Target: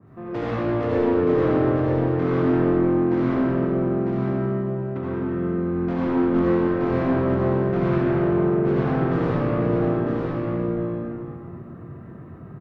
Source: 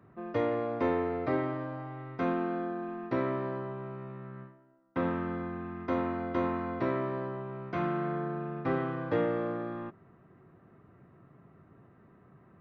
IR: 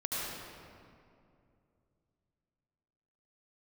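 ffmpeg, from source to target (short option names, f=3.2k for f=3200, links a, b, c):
-filter_complex "[0:a]highpass=f=48:w=0.5412,highpass=f=48:w=1.3066,lowshelf=f=220:g=8.5,asettb=1/sr,asplit=3[a][b][c];[a]atrim=end=3.234[d];[b]atrim=start=3.23:end=5.66,asetpts=PTS-STARTPTS,afade=t=in:d=0.004:c=qsin,afade=t=out:st=2.426:d=0.004:c=qsin,acompressor=threshold=-34dB:ratio=6[e];[c]atrim=start=5.656[f];[d][e]acrossfade=d=0.004:c1=hsin:c2=qsin[g];[g][f]acrossfade=d=0.004:c1=qsin:c2=hsin,asoftclip=type=tanh:threshold=-31dB,aecho=1:1:950:0.596[h];[1:a]atrim=start_sample=2205[i];[h][i]afir=irnorm=-1:irlink=0,adynamicequalizer=threshold=0.00708:dfrequency=1700:dqfactor=0.7:tfrequency=1700:tqfactor=0.7:attack=5:release=100:ratio=0.375:range=2:mode=cutabove:tftype=highshelf,volume=5.5dB"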